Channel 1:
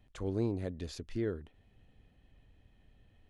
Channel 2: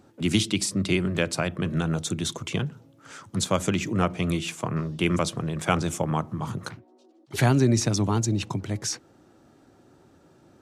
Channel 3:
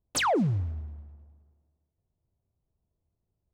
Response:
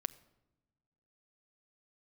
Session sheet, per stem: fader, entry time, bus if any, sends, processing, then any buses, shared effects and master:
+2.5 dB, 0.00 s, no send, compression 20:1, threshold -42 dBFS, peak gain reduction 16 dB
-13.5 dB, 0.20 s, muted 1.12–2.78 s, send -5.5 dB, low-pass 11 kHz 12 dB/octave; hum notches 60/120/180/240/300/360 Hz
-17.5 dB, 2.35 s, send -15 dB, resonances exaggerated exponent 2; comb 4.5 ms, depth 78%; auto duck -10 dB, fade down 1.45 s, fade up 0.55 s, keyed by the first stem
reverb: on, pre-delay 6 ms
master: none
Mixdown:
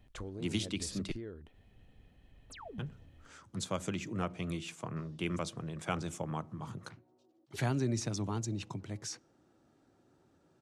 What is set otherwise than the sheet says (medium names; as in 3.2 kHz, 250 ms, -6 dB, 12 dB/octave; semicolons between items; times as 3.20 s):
stem 2: missing hum notches 60/120/180/240/300/360 Hz; reverb return -7.5 dB